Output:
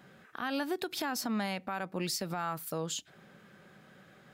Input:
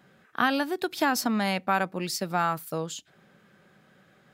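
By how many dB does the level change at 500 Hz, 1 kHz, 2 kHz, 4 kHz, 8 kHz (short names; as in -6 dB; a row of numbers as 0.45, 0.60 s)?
-7.0, -10.0, -10.0, -4.5, -3.0 dB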